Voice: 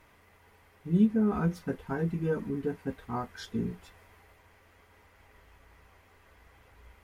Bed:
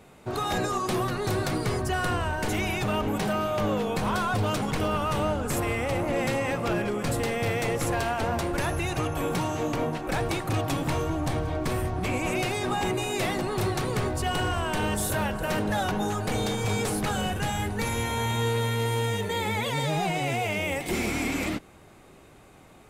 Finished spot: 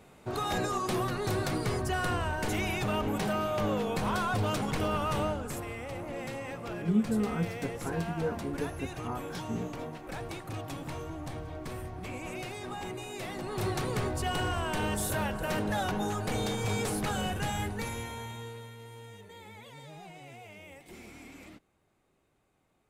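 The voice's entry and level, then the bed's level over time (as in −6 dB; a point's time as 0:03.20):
5.95 s, −3.5 dB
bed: 0:05.21 −3.5 dB
0:05.65 −11.5 dB
0:13.27 −11.5 dB
0:13.69 −4 dB
0:17.63 −4 dB
0:18.77 −21 dB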